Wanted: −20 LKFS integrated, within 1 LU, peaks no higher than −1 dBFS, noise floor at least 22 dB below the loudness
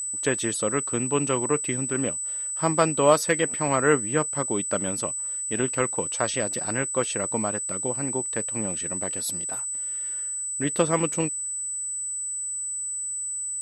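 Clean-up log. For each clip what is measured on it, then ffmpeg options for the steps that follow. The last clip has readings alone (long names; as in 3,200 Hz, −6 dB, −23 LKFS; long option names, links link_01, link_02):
interfering tone 8,000 Hz; level of the tone −28 dBFS; integrated loudness −25.0 LKFS; sample peak −5.0 dBFS; target loudness −20.0 LKFS
→ -af "bandreject=frequency=8000:width=30"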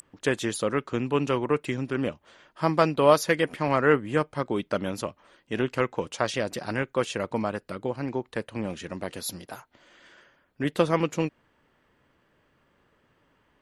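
interfering tone none found; integrated loudness −27.5 LKFS; sample peak −5.5 dBFS; target loudness −20.0 LKFS
→ -af "volume=7.5dB,alimiter=limit=-1dB:level=0:latency=1"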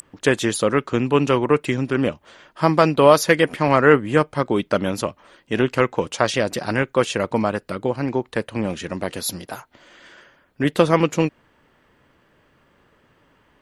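integrated loudness −20.0 LKFS; sample peak −1.0 dBFS; background noise floor −60 dBFS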